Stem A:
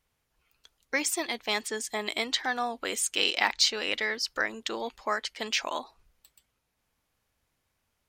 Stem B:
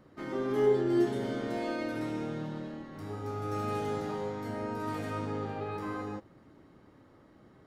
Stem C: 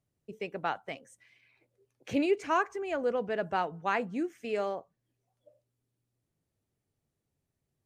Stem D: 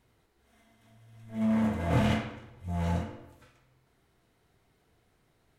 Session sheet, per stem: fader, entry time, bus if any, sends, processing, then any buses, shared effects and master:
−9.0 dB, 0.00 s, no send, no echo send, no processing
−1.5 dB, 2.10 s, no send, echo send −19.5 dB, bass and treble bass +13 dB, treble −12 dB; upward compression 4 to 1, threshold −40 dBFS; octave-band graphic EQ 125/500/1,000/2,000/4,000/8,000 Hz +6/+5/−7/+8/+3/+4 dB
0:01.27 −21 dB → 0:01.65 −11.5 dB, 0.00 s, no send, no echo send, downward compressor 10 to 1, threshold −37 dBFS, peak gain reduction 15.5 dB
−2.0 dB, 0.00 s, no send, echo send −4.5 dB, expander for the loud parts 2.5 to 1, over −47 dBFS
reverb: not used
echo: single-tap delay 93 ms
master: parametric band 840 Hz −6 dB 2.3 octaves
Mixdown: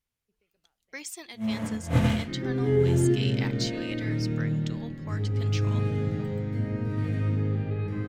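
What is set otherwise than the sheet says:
stem C −21.0 dB → −31.0 dB
stem D −2.0 dB → +6.0 dB

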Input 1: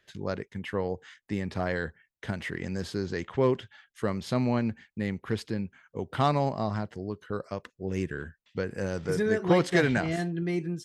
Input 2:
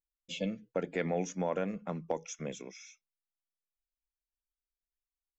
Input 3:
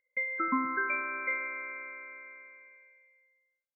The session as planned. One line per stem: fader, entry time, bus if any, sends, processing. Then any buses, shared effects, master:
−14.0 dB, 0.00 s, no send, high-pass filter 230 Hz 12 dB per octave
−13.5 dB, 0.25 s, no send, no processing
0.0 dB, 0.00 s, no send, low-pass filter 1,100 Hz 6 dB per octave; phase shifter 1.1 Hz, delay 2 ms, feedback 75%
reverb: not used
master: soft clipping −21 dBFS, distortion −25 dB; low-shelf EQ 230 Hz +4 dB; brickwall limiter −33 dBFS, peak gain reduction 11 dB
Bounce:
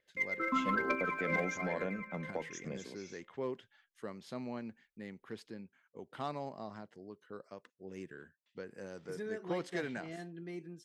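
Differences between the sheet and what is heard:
stem 2 −13.5 dB → −5.5 dB
master: missing brickwall limiter −33 dBFS, peak gain reduction 11 dB

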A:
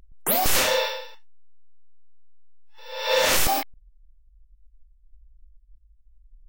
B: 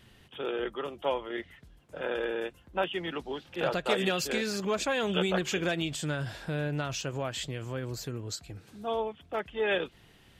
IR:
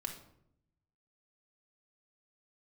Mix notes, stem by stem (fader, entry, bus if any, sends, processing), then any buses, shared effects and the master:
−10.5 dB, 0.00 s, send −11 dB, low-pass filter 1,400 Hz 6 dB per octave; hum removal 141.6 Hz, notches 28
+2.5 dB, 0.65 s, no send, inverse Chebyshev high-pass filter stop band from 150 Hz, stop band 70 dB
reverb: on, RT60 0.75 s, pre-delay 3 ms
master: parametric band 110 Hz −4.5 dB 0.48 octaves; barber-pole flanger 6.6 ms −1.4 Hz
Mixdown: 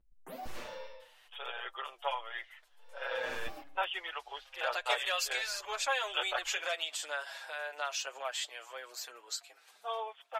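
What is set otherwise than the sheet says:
stem A −10.5 dB → −17.0 dB
stem B: entry 0.65 s → 1.00 s

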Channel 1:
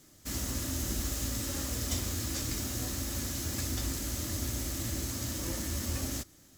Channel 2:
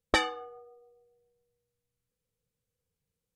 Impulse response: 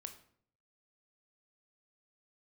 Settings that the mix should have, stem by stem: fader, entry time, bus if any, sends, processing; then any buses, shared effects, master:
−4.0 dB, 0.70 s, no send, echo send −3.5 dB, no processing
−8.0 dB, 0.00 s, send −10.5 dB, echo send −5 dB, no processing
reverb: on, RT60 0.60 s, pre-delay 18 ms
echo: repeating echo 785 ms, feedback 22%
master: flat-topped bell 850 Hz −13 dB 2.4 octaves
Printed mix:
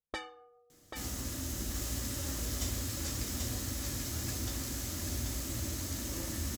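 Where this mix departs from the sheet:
stem 2 −8.0 dB → −16.0 dB
master: missing flat-topped bell 850 Hz −13 dB 2.4 octaves

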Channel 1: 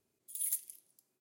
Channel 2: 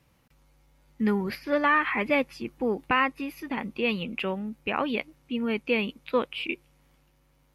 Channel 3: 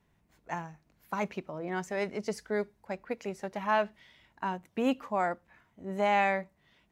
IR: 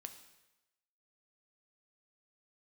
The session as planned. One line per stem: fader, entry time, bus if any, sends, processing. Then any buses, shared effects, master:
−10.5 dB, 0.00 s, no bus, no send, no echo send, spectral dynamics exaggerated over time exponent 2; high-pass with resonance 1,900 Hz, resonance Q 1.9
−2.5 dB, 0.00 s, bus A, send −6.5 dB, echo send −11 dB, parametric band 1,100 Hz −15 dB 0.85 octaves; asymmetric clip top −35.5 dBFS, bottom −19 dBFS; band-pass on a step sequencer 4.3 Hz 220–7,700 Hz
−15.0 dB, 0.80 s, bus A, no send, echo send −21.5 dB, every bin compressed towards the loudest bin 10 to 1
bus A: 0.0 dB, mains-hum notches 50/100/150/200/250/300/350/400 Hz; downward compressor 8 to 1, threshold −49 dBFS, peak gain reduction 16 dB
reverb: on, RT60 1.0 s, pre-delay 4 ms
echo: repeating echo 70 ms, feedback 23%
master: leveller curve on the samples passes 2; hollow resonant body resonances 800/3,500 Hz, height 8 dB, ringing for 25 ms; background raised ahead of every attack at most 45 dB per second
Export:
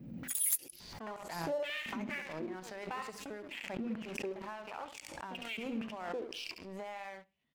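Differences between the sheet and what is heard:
stem 1 −10.5 dB → −1.5 dB
stem 3: missing every bin compressed towards the loudest bin 10 to 1
master: missing hollow resonant body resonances 800/3,500 Hz, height 8 dB, ringing for 25 ms

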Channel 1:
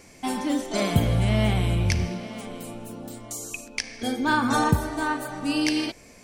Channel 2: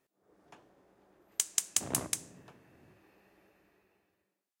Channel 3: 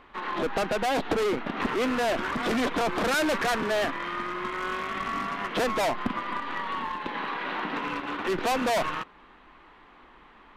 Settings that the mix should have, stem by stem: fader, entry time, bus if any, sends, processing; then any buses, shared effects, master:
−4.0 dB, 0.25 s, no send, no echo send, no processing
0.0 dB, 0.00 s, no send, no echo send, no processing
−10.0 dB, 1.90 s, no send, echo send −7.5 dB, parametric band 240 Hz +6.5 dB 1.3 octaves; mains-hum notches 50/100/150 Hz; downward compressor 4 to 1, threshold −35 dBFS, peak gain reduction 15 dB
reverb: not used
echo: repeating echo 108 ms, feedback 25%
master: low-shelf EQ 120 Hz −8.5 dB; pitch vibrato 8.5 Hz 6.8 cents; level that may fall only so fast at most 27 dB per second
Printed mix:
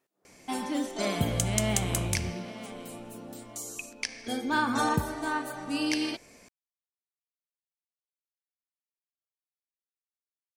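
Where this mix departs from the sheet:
stem 3: muted
master: missing level that may fall only so fast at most 27 dB per second

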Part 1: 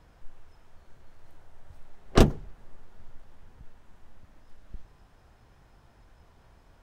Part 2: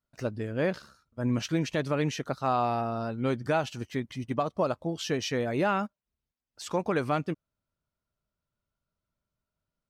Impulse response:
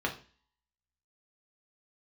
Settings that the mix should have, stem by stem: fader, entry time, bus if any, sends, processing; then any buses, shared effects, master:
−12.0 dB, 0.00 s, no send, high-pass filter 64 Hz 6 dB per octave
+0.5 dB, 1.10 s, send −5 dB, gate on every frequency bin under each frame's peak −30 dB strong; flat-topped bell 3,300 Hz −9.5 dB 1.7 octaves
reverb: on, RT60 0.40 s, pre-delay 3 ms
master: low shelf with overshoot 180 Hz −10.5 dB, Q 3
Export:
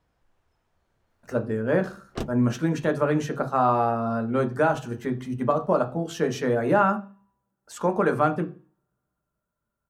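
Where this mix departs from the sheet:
stem 2: missing gate on every frequency bin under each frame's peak −30 dB strong
master: missing low shelf with overshoot 180 Hz −10.5 dB, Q 3

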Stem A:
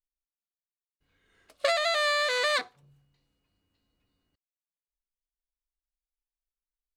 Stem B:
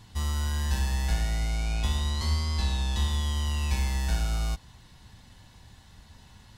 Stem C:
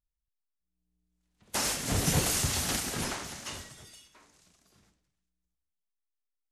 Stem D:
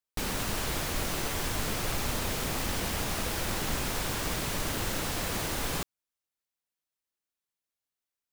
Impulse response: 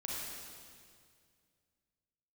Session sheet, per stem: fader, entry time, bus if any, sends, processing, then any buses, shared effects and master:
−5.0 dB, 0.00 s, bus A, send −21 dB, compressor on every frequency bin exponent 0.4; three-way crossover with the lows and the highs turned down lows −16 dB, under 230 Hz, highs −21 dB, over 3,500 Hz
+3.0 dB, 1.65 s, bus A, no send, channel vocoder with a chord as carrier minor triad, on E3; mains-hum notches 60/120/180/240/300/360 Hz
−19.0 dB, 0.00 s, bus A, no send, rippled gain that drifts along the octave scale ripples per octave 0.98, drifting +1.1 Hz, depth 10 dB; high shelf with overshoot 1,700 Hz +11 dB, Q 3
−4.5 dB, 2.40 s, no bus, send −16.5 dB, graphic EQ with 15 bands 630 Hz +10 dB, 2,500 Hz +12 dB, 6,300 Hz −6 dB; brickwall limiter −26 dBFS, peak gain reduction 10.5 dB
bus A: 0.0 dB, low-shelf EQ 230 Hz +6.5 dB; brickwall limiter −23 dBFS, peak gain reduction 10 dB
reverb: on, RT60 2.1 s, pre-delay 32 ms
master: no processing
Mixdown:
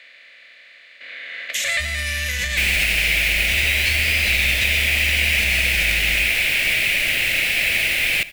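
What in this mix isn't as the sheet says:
stem B: missing channel vocoder with a chord as carrier minor triad, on E3
stem D: missing brickwall limiter −26 dBFS, peak gain reduction 10.5 dB
master: extra high shelf with overshoot 1,500 Hz +11.5 dB, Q 3

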